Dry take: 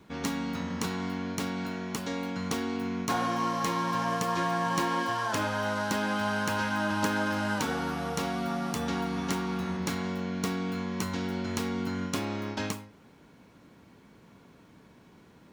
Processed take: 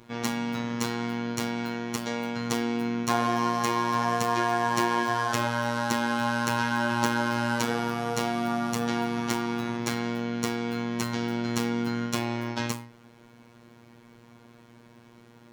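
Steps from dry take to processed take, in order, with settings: robot voice 118 Hz; trim +5 dB

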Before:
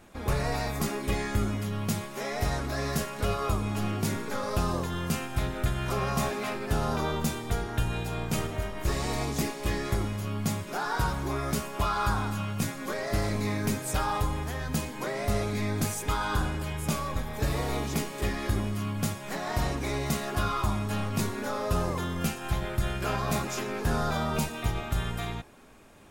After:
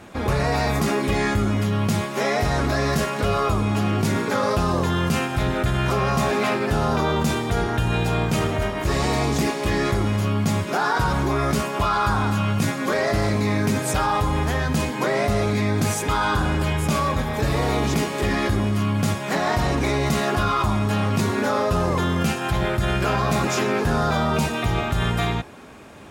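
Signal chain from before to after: high-pass 62 Hz; treble shelf 8.2 kHz -10 dB; in parallel at 0 dB: compressor with a negative ratio -33 dBFS; on the sum: trim +4.5 dB

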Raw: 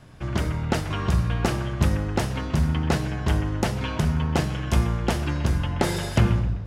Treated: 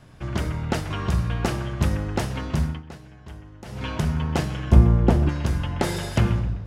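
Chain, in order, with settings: 2.61–3.87 s: dip -17 dB, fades 0.22 s; 4.71–5.29 s: tilt shelf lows +9 dB, about 1.1 kHz; trim -1 dB

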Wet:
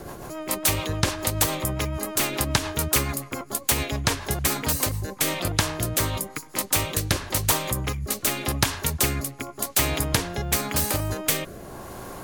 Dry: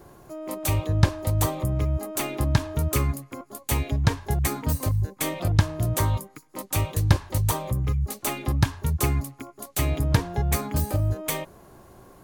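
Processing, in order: rotary cabinet horn 7 Hz, later 0.9 Hz, at 4.89 s; spectrum-flattening compressor 2:1

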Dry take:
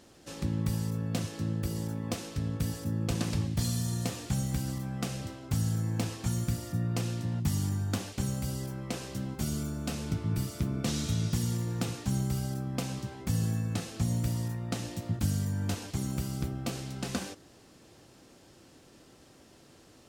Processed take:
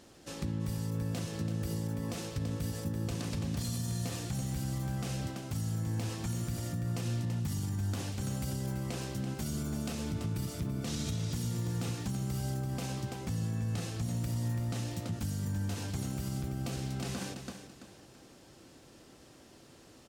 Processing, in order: 13.22–13.68 s: treble shelf 8.7 kHz -7.5 dB; feedback delay 334 ms, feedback 30%, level -10.5 dB; peak limiter -26.5 dBFS, peak gain reduction 10.5 dB

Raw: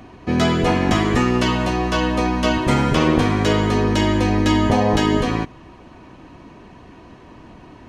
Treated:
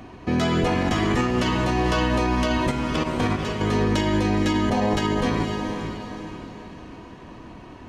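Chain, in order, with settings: 2.70–3.66 s: trance gate "x...x..x" 183 bpm -12 dB; on a send: echo that smears into a reverb 481 ms, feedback 43%, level -10.5 dB; on the sum: peak limiter -13 dBFS, peak gain reduction 9.5 dB

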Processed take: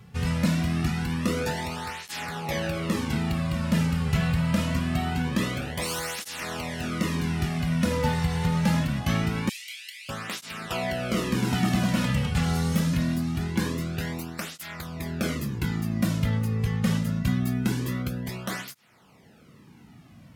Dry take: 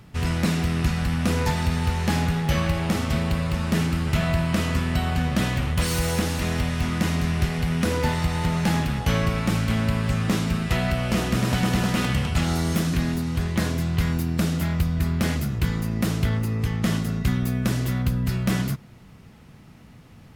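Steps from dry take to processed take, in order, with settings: 9.49–10.09 s: steep high-pass 2.1 kHz 48 dB/octave; cancelling through-zero flanger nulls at 0.24 Hz, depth 3.3 ms

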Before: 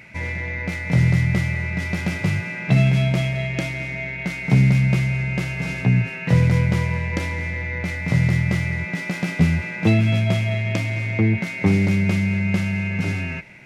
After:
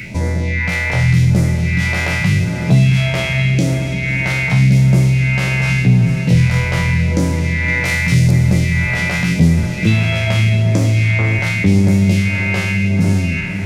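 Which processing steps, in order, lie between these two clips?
spectral sustain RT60 0.75 s; 7.68–8.31 s: treble shelf 3.9 kHz +10.5 dB; in parallel at +2 dB: peak limiter -16 dBFS, peak gain reduction 11.5 dB; on the sum: phase shifter stages 2, 0.86 Hz, lowest notch 190–2500 Hz; on a send: echo that smears into a reverb 540 ms, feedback 63%, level -13 dB; on the sum: three bands compressed up and down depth 40%; trim +1 dB

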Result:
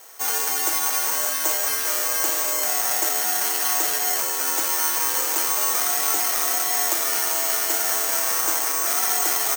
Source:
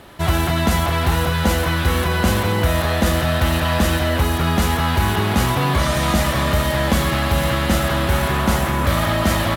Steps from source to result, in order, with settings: frequency shift +110 Hz; Bessel high-pass 620 Hz, order 8; careless resampling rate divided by 6×, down filtered, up zero stuff; trim -6.5 dB

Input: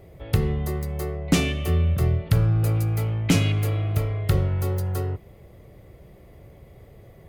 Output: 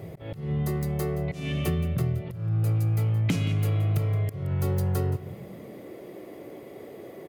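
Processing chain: high-pass sweep 130 Hz -> 300 Hz, 5.15–5.90 s; in parallel at +1 dB: peak limiter -14 dBFS, peak gain reduction 11.5 dB; on the sum: compression 6:1, threshold -24 dBFS, peak gain reduction 16 dB; slow attack 224 ms; delay 173 ms -14.5 dB

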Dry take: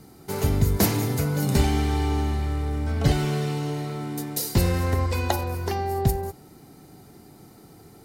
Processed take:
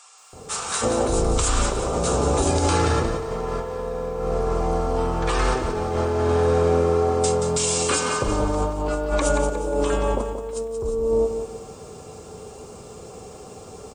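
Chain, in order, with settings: treble shelf 10 kHz +11.5 dB; bands offset in time highs, lows 190 ms, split 1.9 kHz; peak limiter -16 dBFS, peak gain reduction 12.5 dB; high-order bell 1.2 kHz +15.5 dB 2.4 oct; compressor with a negative ratio -22 dBFS, ratio -0.5; speed mistake 78 rpm record played at 45 rpm; bit-crushed delay 179 ms, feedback 35%, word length 9-bit, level -8 dB

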